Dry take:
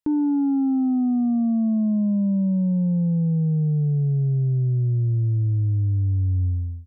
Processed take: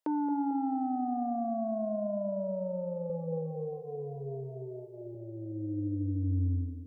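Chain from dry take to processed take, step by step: high-pass sweep 600 Hz -> 160 Hz, 5.13–6.43 s; 3.06–5.15 s: doubling 37 ms -2.5 dB; on a send: band-passed feedback delay 223 ms, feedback 58%, band-pass 440 Hz, level -9.5 dB

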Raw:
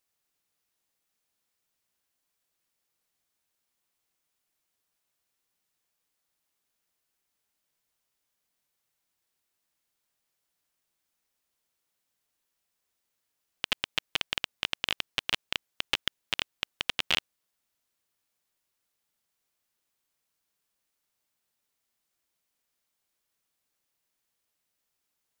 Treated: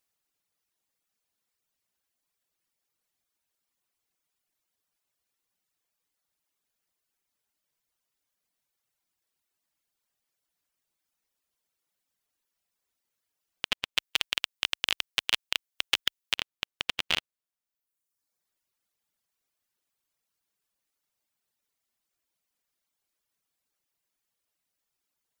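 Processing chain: reverb removal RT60 1.1 s; 13.97–16.35 s: tilt EQ +2 dB/octave

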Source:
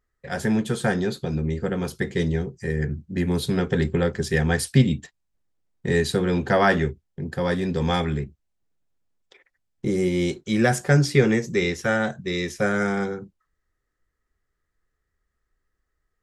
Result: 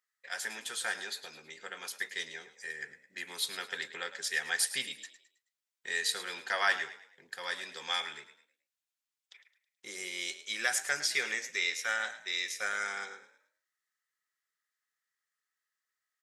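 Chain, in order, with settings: Bessel high-pass 2.2 kHz, order 2; on a send: frequency-shifting echo 107 ms, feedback 37%, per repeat +35 Hz, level -13.5 dB

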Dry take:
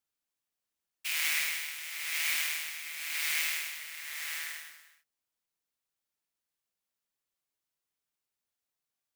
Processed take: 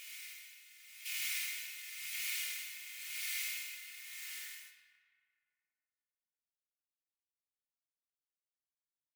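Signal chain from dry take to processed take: hum notches 60/120/180/240 Hz; gate -47 dBFS, range -12 dB; amplifier tone stack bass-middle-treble 6-0-2; comb 2.8 ms, depth 76%; on a send at -6.5 dB: reverberation RT60 2.5 s, pre-delay 15 ms; on the sum: wow and flutter 16 cents; reverse echo 1124 ms -11 dB; trim +6 dB

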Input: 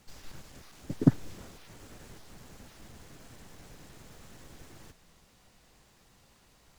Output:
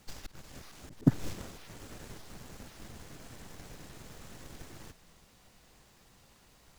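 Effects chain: companding laws mixed up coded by A; slow attack 265 ms; trim +9.5 dB

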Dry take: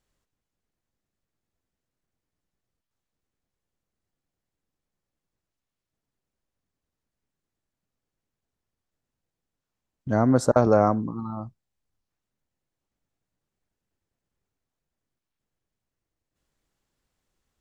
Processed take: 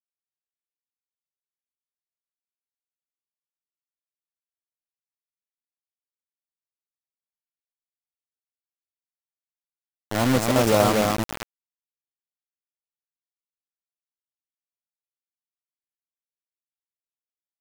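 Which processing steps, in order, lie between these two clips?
transient shaper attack -8 dB, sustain -2 dB; multi-tap echo 240/818 ms -3.5/-18.5 dB; bit crusher 4-bit

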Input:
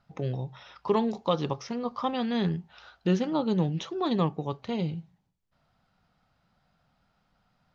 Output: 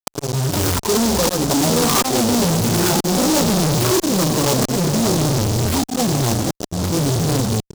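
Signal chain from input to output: low-pass that closes with the level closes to 1.7 kHz, closed at -26 dBFS; in parallel at +1 dB: compression 4:1, threshold -38 dBFS, peak gain reduction 15.5 dB; on the sum: spectral gate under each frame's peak -15 dB strong; reverse echo 83 ms -10 dB; dynamic bell 340 Hz, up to +4 dB, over -45 dBFS, Q 7.7; on a send: feedback delay 414 ms, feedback 44%, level -20 dB; on the sum: ever faster or slower copies 292 ms, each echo -6 st, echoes 2, each echo -6 dB; granulator, grains 20 per s, spray 21 ms; slow attack 773 ms; fuzz box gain 52 dB, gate -52 dBFS; bass shelf 180 Hz -6.5 dB; delay time shaken by noise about 5.5 kHz, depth 0.14 ms

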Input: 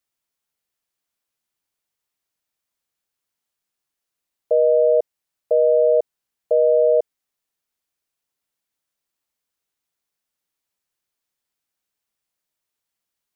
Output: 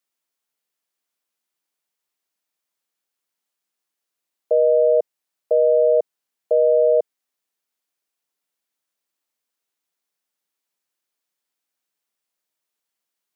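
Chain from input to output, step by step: high-pass 200 Hz

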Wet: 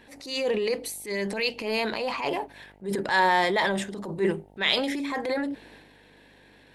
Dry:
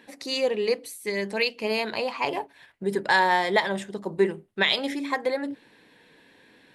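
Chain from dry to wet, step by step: mains buzz 50 Hz, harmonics 18, -61 dBFS -2 dB/octave; transient shaper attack -9 dB, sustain +6 dB

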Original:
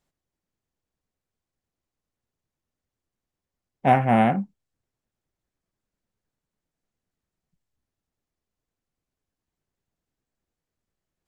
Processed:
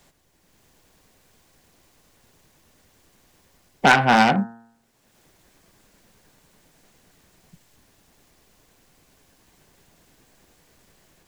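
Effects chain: self-modulated delay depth 0.59 ms; bass shelf 470 Hz -3.5 dB; band-stop 1.3 kHz, Q 18; level rider gain up to 7.5 dB; de-hum 115.4 Hz, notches 16; three bands compressed up and down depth 70%; trim +1.5 dB

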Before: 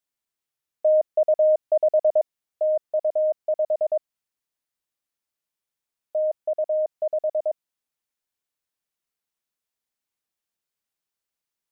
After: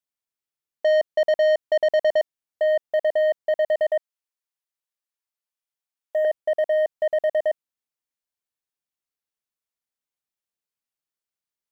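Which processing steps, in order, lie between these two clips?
3.89–6.25 s: high-pass 540 Hz 12 dB/octave; waveshaping leveller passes 2; trim -1.5 dB

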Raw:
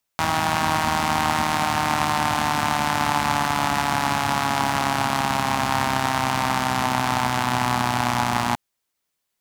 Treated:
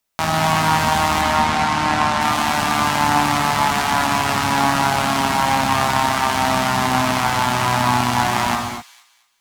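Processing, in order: 1.21–2.21 s: distance through air 53 m; feedback echo behind a high-pass 225 ms, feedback 31%, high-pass 2.6 kHz, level -13 dB; gated-style reverb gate 280 ms flat, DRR 1.5 dB; trim +2 dB

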